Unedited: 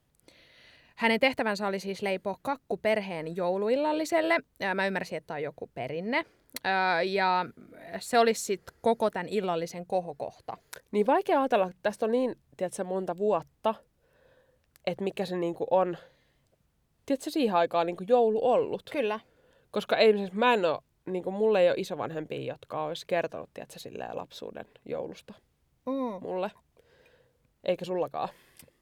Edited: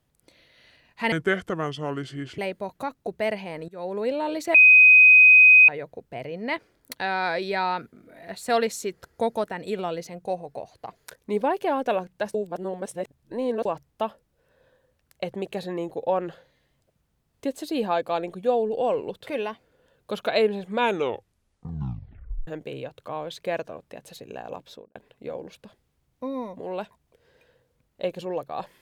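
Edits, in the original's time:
1.12–2.03 speed 72%
3.33–3.61 fade in, from -20 dB
4.19–5.33 bleep 2510 Hz -9 dBFS
11.99–13.3 reverse
20.43 tape stop 1.69 s
24.32–24.6 studio fade out

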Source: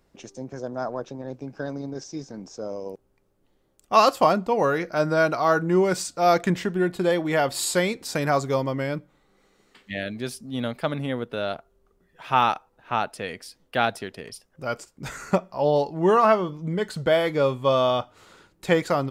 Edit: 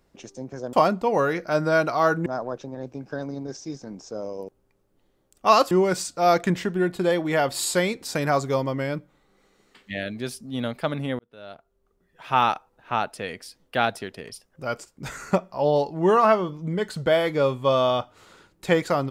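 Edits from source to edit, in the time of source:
4.18–5.71 move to 0.73
11.19–12.43 fade in

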